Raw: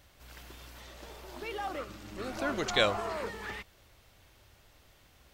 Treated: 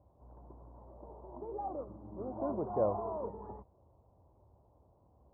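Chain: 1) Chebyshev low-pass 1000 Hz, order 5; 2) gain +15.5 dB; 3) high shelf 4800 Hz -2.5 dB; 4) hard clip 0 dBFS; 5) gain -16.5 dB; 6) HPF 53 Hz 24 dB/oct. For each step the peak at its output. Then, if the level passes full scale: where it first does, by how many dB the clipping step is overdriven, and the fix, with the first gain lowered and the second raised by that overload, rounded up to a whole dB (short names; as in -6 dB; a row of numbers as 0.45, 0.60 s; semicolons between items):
-18.5, -3.0, -3.0, -3.0, -19.5, -19.0 dBFS; no overload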